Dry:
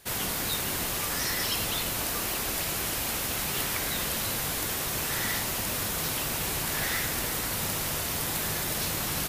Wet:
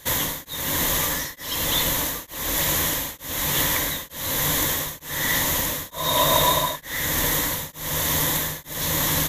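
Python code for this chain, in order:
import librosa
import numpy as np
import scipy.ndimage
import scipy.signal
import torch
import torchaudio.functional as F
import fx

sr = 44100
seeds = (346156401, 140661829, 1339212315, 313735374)

y = fx.ripple_eq(x, sr, per_octave=1.1, db=9)
y = fx.rider(y, sr, range_db=10, speed_s=0.5)
y = fx.small_body(y, sr, hz=(640.0, 1000.0, 3700.0), ring_ms=40, db=17, at=(5.9, 6.76))
y = y * np.abs(np.cos(np.pi * 1.1 * np.arange(len(y)) / sr))
y = F.gain(torch.from_numpy(y), 7.0).numpy()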